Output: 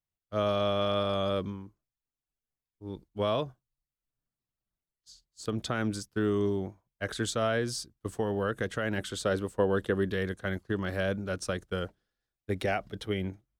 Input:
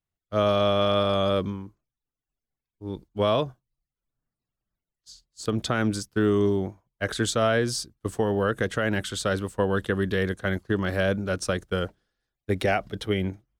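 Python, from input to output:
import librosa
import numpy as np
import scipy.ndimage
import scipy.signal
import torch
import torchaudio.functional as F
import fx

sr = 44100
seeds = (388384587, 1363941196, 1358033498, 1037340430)

y = fx.peak_eq(x, sr, hz=430.0, db=5.0, octaves=1.8, at=(8.98, 10.11))
y = F.gain(torch.from_numpy(y), -6.0).numpy()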